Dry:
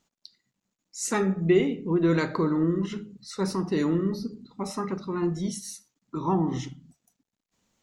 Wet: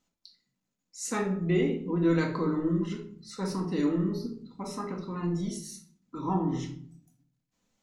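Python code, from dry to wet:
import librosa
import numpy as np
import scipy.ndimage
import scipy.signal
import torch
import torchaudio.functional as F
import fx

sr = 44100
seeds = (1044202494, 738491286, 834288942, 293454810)

y = fx.room_shoebox(x, sr, seeds[0], volume_m3=520.0, walls='furnished', distance_m=2.0)
y = F.gain(torch.from_numpy(y), -6.5).numpy()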